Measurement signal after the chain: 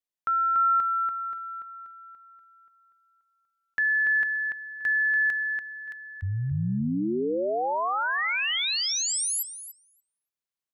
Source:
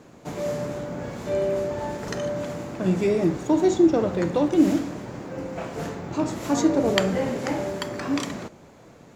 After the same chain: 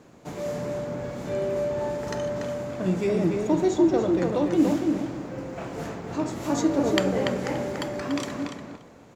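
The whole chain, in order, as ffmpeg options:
-filter_complex "[0:a]asplit=2[a][b];[b]adelay=288,lowpass=f=3.6k:p=1,volume=-4dB,asplit=2[c][d];[d]adelay=288,lowpass=f=3.6k:p=1,volume=0.2,asplit=2[e][f];[f]adelay=288,lowpass=f=3.6k:p=1,volume=0.2[g];[a][c][e][g]amix=inputs=4:normalize=0,volume=-3dB"

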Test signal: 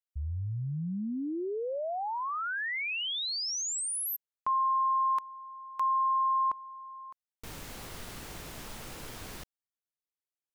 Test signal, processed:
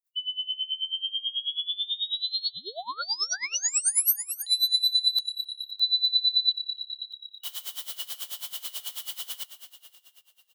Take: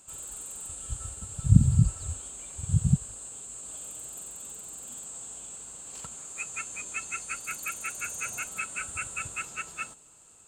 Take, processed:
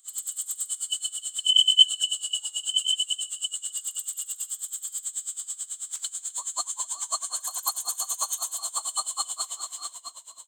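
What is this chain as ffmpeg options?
-filter_complex "[0:a]afftfilt=real='real(if(lt(b,272),68*(eq(floor(b/68),0)*1+eq(floor(b/68),1)*3+eq(floor(b/68),2)*0+eq(floor(b/68),3)*2)+mod(b,68),b),0)':imag='imag(if(lt(b,272),68*(eq(floor(b/68),0)*1+eq(floor(b/68),1)*3+eq(floor(b/68),2)*0+eq(floor(b/68),3)*2)+mod(b,68),b),0)':win_size=2048:overlap=0.75,highpass=650,aemphasis=mode=production:type=50kf,asplit=2[a][b];[b]asplit=6[c][d][e][f][g][h];[c]adelay=258,afreqshift=-34,volume=-11dB[i];[d]adelay=516,afreqshift=-68,volume=-16dB[j];[e]adelay=774,afreqshift=-102,volume=-21.1dB[k];[f]adelay=1032,afreqshift=-136,volume=-26.1dB[l];[g]adelay=1290,afreqshift=-170,volume=-31.1dB[m];[h]adelay=1548,afreqshift=-204,volume=-36.2dB[n];[i][j][k][l][m][n]amix=inputs=6:normalize=0[o];[a][o]amix=inputs=2:normalize=0,aeval=exprs='val(0)*pow(10,-20*(0.5-0.5*cos(2*PI*9.2*n/s))/20)':c=same,volume=4dB"

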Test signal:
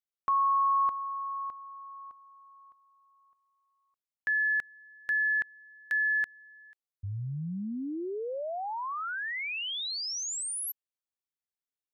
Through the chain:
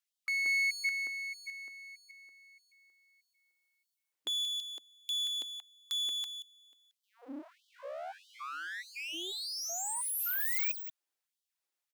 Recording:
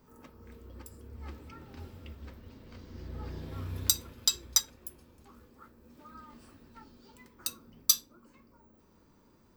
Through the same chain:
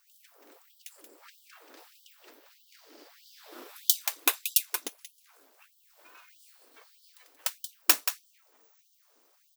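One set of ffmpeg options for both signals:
-filter_complex "[0:a]highshelf=f=4.6k:g=10.5,asplit=2[a][b];[b]aecho=0:1:180:0.355[c];[a][c]amix=inputs=2:normalize=0,aeval=exprs='abs(val(0))':c=same,afftfilt=real='re*gte(b*sr/1024,220*pow(3000/220,0.5+0.5*sin(2*PI*1.6*pts/sr)))':imag='im*gte(b*sr/1024,220*pow(3000/220,0.5+0.5*sin(2*PI*1.6*pts/sr)))':win_size=1024:overlap=0.75"

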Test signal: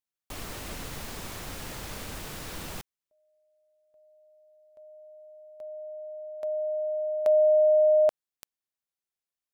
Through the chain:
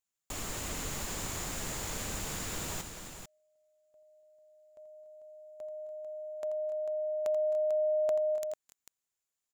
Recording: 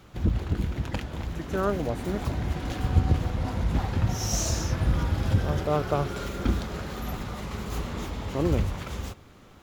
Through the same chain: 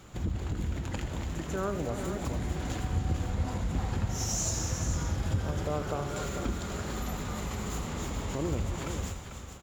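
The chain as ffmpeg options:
-filter_complex "[0:a]equalizer=f=7.1k:t=o:w=0.23:g=12.5,acompressor=threshold=-31dB:ratio=2:attack=1.2:release=334:detection=peak,asplit=2[a][b];[b]aecho=0:1:84|85|261|266|289|445:0.266|0.106|0.106|0.112|0.2|0.376[c];[a][c]amix=inputs=2:normalize=0"

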